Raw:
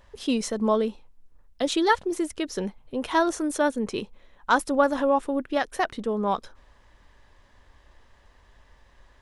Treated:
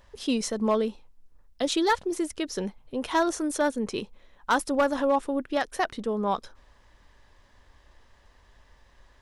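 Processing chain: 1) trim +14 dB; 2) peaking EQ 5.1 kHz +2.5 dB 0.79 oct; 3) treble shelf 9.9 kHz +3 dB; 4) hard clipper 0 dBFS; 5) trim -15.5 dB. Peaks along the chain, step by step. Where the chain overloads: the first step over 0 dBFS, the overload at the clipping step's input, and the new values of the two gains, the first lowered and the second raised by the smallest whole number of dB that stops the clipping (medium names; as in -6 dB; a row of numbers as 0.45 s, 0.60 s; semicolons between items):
+7.5 dBFS, +7.5 dBFS, +7.5 dBFS, 0.0 dBFS, -15.5 dBFS; step 1, 7.5 dB; step 1 +6 dB, step 5 -7.5 dB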